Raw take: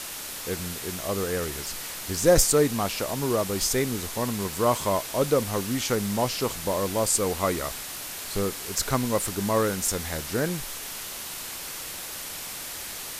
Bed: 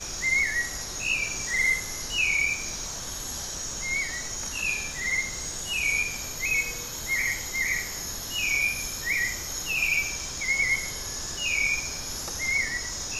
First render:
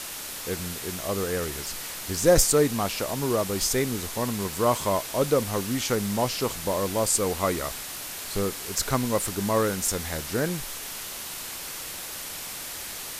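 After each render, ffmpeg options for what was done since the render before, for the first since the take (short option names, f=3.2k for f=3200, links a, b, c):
-af anull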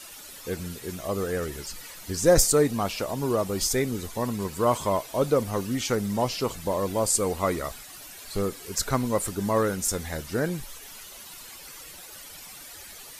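-af "afftdn=nr=12:nf=-37"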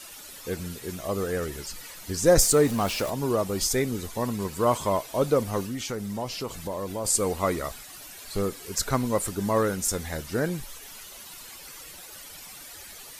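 -filter_complex "[0:a]asettb=1/sr,asplit=3[a][b][c];[a]atrim=end=2.424[d];[b]atrim=start=2.42:end=3.1,asetpts=PTS-STARTPTS,afade=t=in:d=0.004:c=qsin,afade=t=out:st=0.676:d=0.004:c=qsin,aeval=exprs='val(0)+0.5*0.0237*sgn(val(0))':c=same[e];[c]atrim=start=3.096[f];[d][e]acrossfade=d=0.004:c1=hsin:c2=qsin[g];[g][f]acrossfade=d=0.004:c1=qsin:c2=hsin,asplit=3[h][i][j];[h]afade=t=out:st=5.65:d=0.02[k];[i]acompressor=threshold=-32dB:ratio=2:attack=3.2:release=140:knee=1:detection=peak,afade=t=in:st=5.65:d=0.02,afade=t=out:st=7.04:d=0.02[l];[j]afade=t=in:st=7.04:d=0.02[m];[k][l][m]amix=inputs=3:normalize=0"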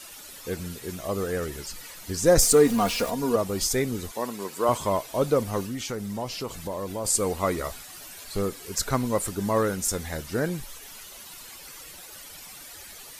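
-filter_complex "[0:a]asettb=1/sr,asplit=3[a][b][c];[a]atrim=end=2.424[d];[b]atrim=start=2.42:end=3.36,asetpts=PTS-STARTPTS,afade=t=in:d=0.004:c=qsin,afade=t=out:st=0.936:d=0.004:c=qsin,aecho=1:1:4.2:0.65,atrim=end_sample=41454[e];[c]atrim=start=3.356[f];[d][e]acrossfade=d=0.004:c1=hsin:c2=qsin[g];[g][f]acrossfade=d=0.004:c1=qsin:c2=hsin,asettb=1/sr,asplit=3[h][i][j];[h]atrim=end=4.114[k];[i]atrim=start=4.11:end=4.69,asetpts=PTS-STARTPTS,afade=t=in:d=0.004:c=qsin,afade=t=out:st=0.576:d=0.004:c=qsin,highpass=300[l];[j]atrim=start=4.686[m];[k][l]acrossfade=d=0.004:c1=hsin:c2=qsin[n];[n][m]acrossfade=d=0.004:c1=qsin:c2=hsin,asettb=1/sr,asplit=3[o][p][q];[o]atrim=end=7.574[r];[p]atrim=start=7.57:end=8.24,asetpts=PTS-STARTPTS,afade=t=in:d=0.004:c=qsin,afade=t=out:st=0.666:d=0.004:c=qsin,asplit=2[s][t];[t]adelay=12,volume=-6.5dB[u];[s][u]amix=inputs=2:normalize=0,atrim=end_sample=29547[v];[q]atrim=start=8.236[w];[r][v]acrossfade=d=0.004:c1=hsin:c2=qsin[x];[x][w]acrossfade=d=0.004:c1=qsin:c2=hsin"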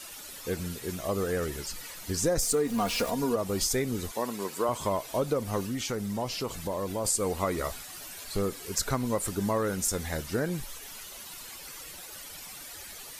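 -af "acompressor=threshold=-24dB:ratio=6"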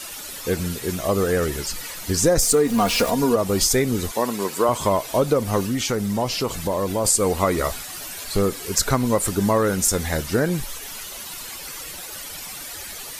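-af "volume=9dB"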